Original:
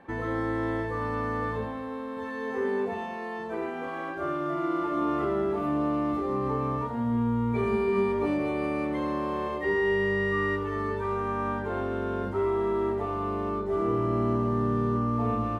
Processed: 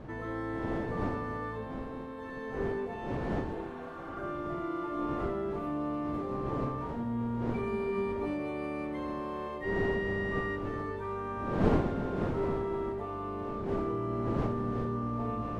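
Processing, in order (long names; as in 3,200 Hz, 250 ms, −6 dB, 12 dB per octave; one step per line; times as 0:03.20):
wind on the microphone 390 Hz −31 dBFS
healed spectral selection 0:03.52–0:04.20, 630–4,300 Hz both
level −7 dB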